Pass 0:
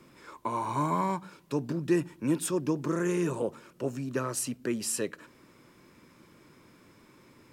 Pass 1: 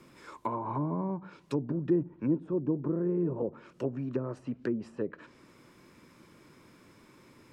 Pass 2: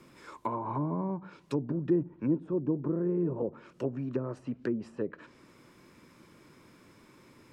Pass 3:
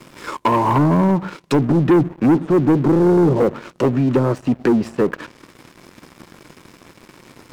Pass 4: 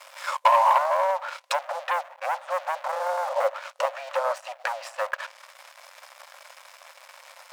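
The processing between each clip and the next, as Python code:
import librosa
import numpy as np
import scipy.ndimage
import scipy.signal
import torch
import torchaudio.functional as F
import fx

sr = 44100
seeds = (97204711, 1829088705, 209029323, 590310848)

y1 = fx.env_lowpass_down(x, sr, base_hz=510.0, full_db=-26.5)
y2 = y1
y3 = fx.leveller(y2, sr, passes=3)
y3 = F.gain(torch.from_numpy(y3), 8.5).numpy()
y4 = fx.brickwall_highpass(y3, sr, low_hz=520.0)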